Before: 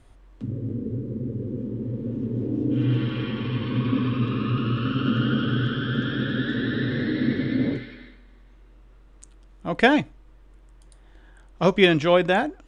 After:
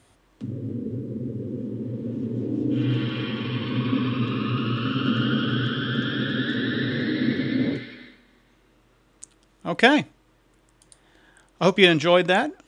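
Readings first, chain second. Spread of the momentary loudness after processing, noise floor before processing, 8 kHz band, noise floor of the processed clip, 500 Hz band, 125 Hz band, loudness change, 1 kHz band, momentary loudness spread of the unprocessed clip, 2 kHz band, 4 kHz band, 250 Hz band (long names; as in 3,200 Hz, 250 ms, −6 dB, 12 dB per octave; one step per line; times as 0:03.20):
14 LU, −51 dBFS, can't be measured, −61 dBFS, 0.0 dB, −2.0 dB, +0.5 dB, +0.5 dB, 12 LU, +2.0 dB, +4.0 dB, 0.0 dB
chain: high-pass filter 110 Hz
high-shelf EQ 2,900 Hz +7.5 dB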